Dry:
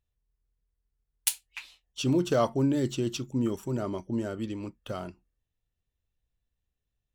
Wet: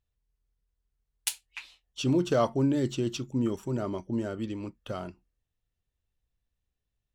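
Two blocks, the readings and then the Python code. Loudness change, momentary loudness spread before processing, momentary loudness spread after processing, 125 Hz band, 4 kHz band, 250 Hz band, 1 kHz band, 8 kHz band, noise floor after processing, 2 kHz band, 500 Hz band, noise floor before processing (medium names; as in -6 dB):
0.0 dB, 15 LU, 16 LU, 0.0 dB, -1.0 dB, 0.0 dB, 0.0 dB, -3.5 dB, -84 dBFS, -0.5 dB, 0.0 dB, -84 dBFS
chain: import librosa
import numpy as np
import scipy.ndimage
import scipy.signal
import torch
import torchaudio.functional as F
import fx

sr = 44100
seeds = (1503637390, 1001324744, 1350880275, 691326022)

y = fx.high_shelf(x, sr, hz=11000.0, db=-10.5)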